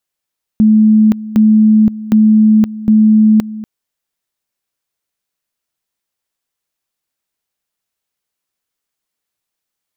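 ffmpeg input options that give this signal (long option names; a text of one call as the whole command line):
ffmpeg -f lavfi -i "aevalsrc='pow(10,(-4.5-17*gte(mod(t,0.76),0.52))/20)*sin(2*PI*216*t)':duration=3.04:sample_rate=44100" out.wav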